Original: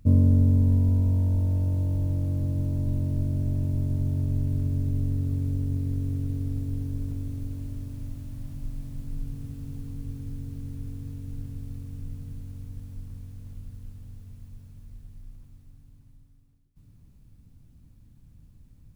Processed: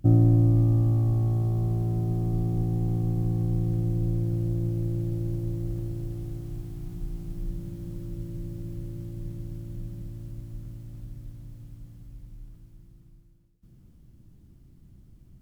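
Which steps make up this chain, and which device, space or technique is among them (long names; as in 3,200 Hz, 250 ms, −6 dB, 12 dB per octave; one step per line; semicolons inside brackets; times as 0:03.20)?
nightcore (speed change +23%)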